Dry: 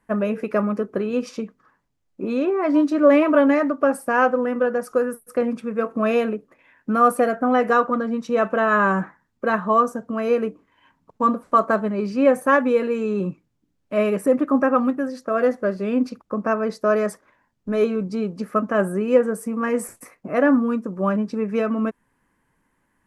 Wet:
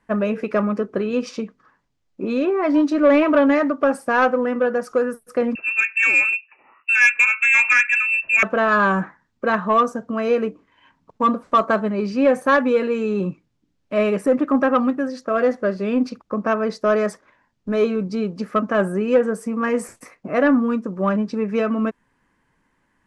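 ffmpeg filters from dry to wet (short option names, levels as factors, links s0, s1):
-filter_complex "[0:a]asettb=1/sr,asplit=3[s0][s1][s2];[s0]atrim=end=5.554[s3];[s1]atrim=start=5.55:end=8.43,asetpts=PTS-STARTPTS,afade=t=in:d=0.004:c=qsin,afade=t=out:st=2.876:d=0.004:c=qsin,lowpass=f=2500:t=q:w=0.5098,lowpass=f=2500:t=q:w=0.6013,lowpass=f=2500:t=q:w=0.9,lowpass=f=2500:t=q:w=2.563,afreqshift=-2900[s4];[s2]atrim=start=8.426[s5];[s3][s4]acrossfade=d=0.004:c1=hsin:c2=qsin[s6];[s6][s5]acrossfade=d=0.004:c1=qsin:c2=hsin,lowpass=5300,highshelf=f=3500:g=7.5,acontrast=67,volume=0.562"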